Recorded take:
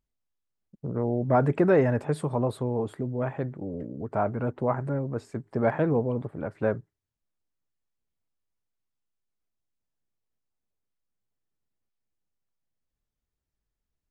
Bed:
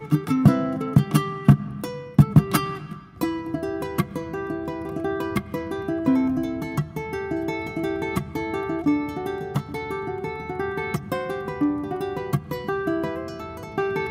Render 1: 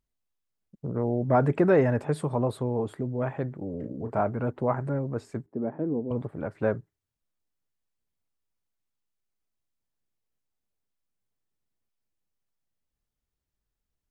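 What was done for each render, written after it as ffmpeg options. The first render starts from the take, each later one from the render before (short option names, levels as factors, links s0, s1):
-filter_complex "[0:a]asettb=1/sr,asplit=3[s0][s1][s2];[s0]atrim=end=3.804[s3];[s1]atrim=start=3.8:end=4.21,asetpts=PTS-STARTPTS,afade=t=in:d=0.004:c=qsin,afade=t=out:st=0.406:d=0.004:c=qsin,asplit=2[s4][s5];[s5]adelay=34,volume=0.447[s6];[s4][s6]amix=inputs=2:normalize=0,atrim=end_sample=18081[s7];[s2]atrim=start=4.206[s8];[s3][s7]acrossfade=d=0.004:c1=hsin:c2=qsin[s9];[s9][s8]acrossfade=d=0.004:c1=qsin:c2=hsin,asettb=1/sr,asplit=3[s10][s11][s12];[s10]atrim=end=5.464[s13];[s11]atrim=start=5.46:end=6.11,asetpts=PTS-STARTPTS,afade=t=in:d=0.004:c=qsin,afade=t=out:st=0.646:d=0.004:c=qsin,bandpass=f=280:t=q:w=1.9[s14];[s12]atrim=start=6.106[s15];[s13][s14]acrossfade=d=0.004:c1=hsin:c2=qsin[s16];[s16][s15]acrossfade=d=0.004:c1=qsin:c2=hsin"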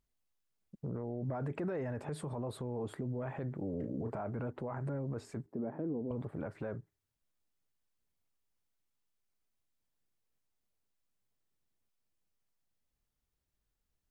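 -af "acompressor=threshold=0.0282:ratio=3,alimiter=level_in=2:limit=0.0631:level=0:latency=1:release=22,volume=0.501"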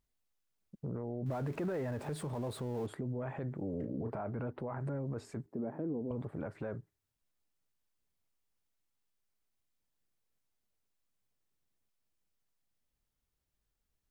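-filter_complex "[0:a]asettb=1/sr,asplit=3[s0][s1][s2];[s0]atrim=end=1.264[s3];[s1]atrim=start=1.26:end=2.87,asetpts=PTS-STARTPTS,afade=t=in:d=0.004:c=qsin,afade=t=out:st=1.606:d=0.004:c=qsin,aeval=exprs='val(0)+0.5*0.00355*sgn(val(0))':c=same[s4];[s2]atrim=start=2.866[s5];[s3][s4]acrossfade=d=0.004:c1=hsin:c2=qsin[s6];[s6][s5]acrossfade=d=0.004:c1=qsin:c2=hsin,asettb=1/sr,asplit=3[s7][s8][s9];[s7]atrim=end=3.854[s10];[s8]atrim=start=3.85:end=4.8,asetpts=PTS-STARTPTS,afade=t=in:d=0.004:c=qsin,afade=t=out:st=0.946:d=0.004:c=qsin,equalizer=f=7300:w=3.2:g=-12.5[s11];[s9]atrim=start=4.796[s12];[s10][s11]acrossfade=d=0.004:c1=hsin:c2=qsin[s13];[s13][s12]acrossfade=d=0.004:c1=qsin:c2=hsin"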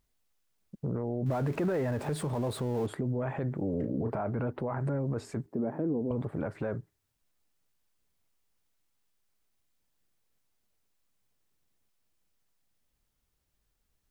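-af "volume=2.11"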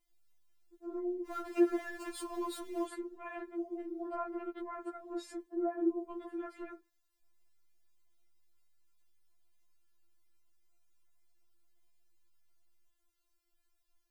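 -af "afftfilt=real='re*4*eq(mod(b,16),0)':imag='im*4*eq(mod(b,16),0)':win_size=2048:overlap=0.75"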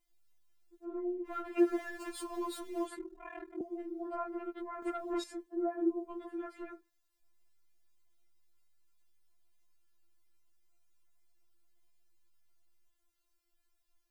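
-filter_complex "[0:a]asplit=3[s0][s1][s2];[s0]afade=t=out:st=0.84:d=0.02[s3];[s1]highshelf=f=3700:t=q:w=1.5:g=-8.5,afade=t=in:st=0.84:d=0.02,afade=t=out:st=1.58:d=0.02[s4];[s2]afade=t=in:st=1.58:d=0.02[s5];[s3][s4][s5]amix=inputs=3:normalize=0,asettb=1/sr,asplit=3[s6][s7][s8];[s6]atrim=end=2.974[s9];[s7]atrim=start=2.97:end=3.61,asetpts=PTS-STARTPTS,afade=t=in:d=0.004:c=qsin,afade=t=out:st=0.636:d=0.004:c=qsin,aeval=exprs='val(0)*sin(2*PI*20*n/s)':c=same[s10];[s8]atrim=start=3.606[s11];[s9][s10]acrossfade=d=0.004:c1=hsin:c2=qsin[s12];[s12][s11]acrossfade=d=0.004:c1=qsin:c2=hsin,asettb=1/sr,asplit=3[s13][s14][s15];[s13]atrim=end=4.824[s16];[s14]atrim=start=4.82:end=5.24,asetpts=PTS-STARTPTS,afade=t=in:d=0.004:c=qsin,afade=t=out:st=0.416:d=0.004:c=qsin,aeval=exprs='0.0316*sin(PI/2*1.78*val(0)/0.0316)':c=same[s17];[s15]atrim=start=5.236[s18];[s16][s17]acrossfade=d=0.004:c1=hsin:c2=qsin[s19];[s19][s18]acrossfade=d=0.004:c1=qsin:c2=hsin"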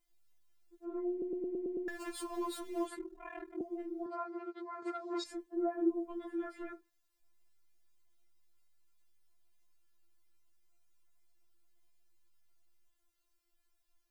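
-filter_complex "[0:a]asettb=1/sr,asplit=3[s0][s1][s2];[s0]atrim=end=4.064[s3];[s1]atrim=start=4.06:end=5.26,asetpts=PTS-STARTPTS,afade=t=in:d=0.004:c=qsin,afade=t=out:st=1.196:d=0.004:c=qsin,highpass=f=100:w=0.5412,highpass=f=100:w=1.3066,equalizer=f=180:t=q:w=4:g=-8,equalizer=f=270:t=q:w=4:g=-9,equalizer=f=580:t=q:w=4:g=-9,equalizer=f=1800:t=q:w=4:g=-4,equalizer=f=2900:t=q:w=4:g=-7,equalizer=f=4500:t=q:w=4:g=8,lowpass=f=7600:w=0.5412,lowpass=f=7600:w=1.3066[s4];[s2]atrim=start=5.256[s5];[s3][s4]acrossfade=d=0.004:c1=hsin:c2=qsin[s6];[s6][s5]acrossfade=d=0.004:c1=qsin:c2=hsin,asettb=1/sr,asplit=3[s7][s8][s9];[s7]atrim=end=5.924[s10];[s8]atrim=start=5.92:end=6.73,asetpts=PTS-STARTPTS,afade=t=in:d=0.004:c=qsin,afade=t=out:st=0.806:d=0.004:c=qsin,asplit=2[s11][s12];[s12]adelay=18,volume=0.473[s13];[s11][s13]amix=inputs=2:normalize=0,atrim=end_sample=35721[s14];[s9]atrim=start=6.726[s15];[s10][s14]acrossfade=d=0.004:c1=hsin:c2=qsin[s16];[s16][s15]acrossfade=d=0.004:c1=qsin:c2=hsin,asplit=8[s17][s18][s19][s20][s21][s22][s23][s24];[s17]atrim=end=1.222[s25];[s18]atrim=start=1.108:end=1.222[s26];[s19]atrim=start=1.108:end=1.222[s27];[s20]atrim=start=1.108:end=1.222[s28];[s21]atrim=start=1.108:end=1.222[s29];[s22]atrim=start=1.108:end=1.222[s30];[s23]atrim=start=1.108:end=1.222[s31];[s24]atrim=start=1.878[s32];[s25][s26]acrossfade=d=0.004:c1=hsin:c2=hsin[s33];[s33][s27]acrossfade=d=0.004:c1=hsin:c2=hsin[s34];[s34][s28]acrossfade=d=0.004:c1=hsin:c2=hsin[s35];[s35][s29]acrossfade=d=0.004:c1=hsin:c2=hsin[s36];[s36][s30]acrossfade=d=0.004:c1=hsin:c2=hsin[s37];[s37][s31]acrossfade=d=0.004:c1=hsin:c2=hsin[s38];[s38][s32]acrossfade=d=0.004:c1=hsin:c2=hsin"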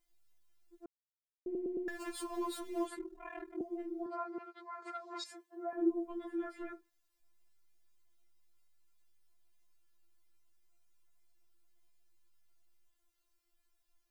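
-filter_complex "[0:a]asettb=1/sr,asplit=3[s0][s1][s2];[s0]atrim=end=4.384[s3];[s1]atrim=start=4.38:end=5.73,asetpts=PTS-STARTPTS,afade=t=in:d=0.004:c=qsin,afade=t=out:st=1.346:d=0.004:c=qsin,highpass=680[s4];[s2]atrim=start=5.726[s5];[s3][s4]acrossfade=d=0.004:c1=hsin:c2=qsin[s6];[s6][s5]acrossfade=d=0.004:c1=qsin:c2=hsin,asplit=3[s7][s8][s9];[s7]atrim=end=0.86,asetpts=PTS-STARTPTS,afade=t=out:st=0.856:d=0.004:c=hsin[s10];[s8]atrim=start=0.86:end=1.46,asetpts=PTS-STARTPTS,volume=0[s11];[s9]atrim=start=1.46,asetpts=PTS-STARTPTS,afade=t=in:d=0.004:c=hsin[s12];[s10][s11][s12]concat=n=3:v=0:a=1"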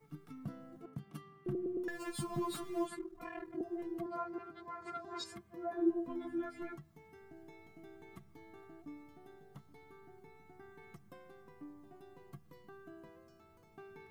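-filter_complex "[1:a]volume=0.0355[s0];[0:a][s0]amix=inputs=2:normalize=0"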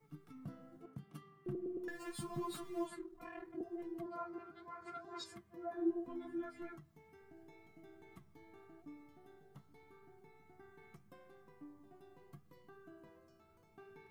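-af "flanger=delay=5.3:depth=8.9:regen=-71:speed=0.78:shape=triangular"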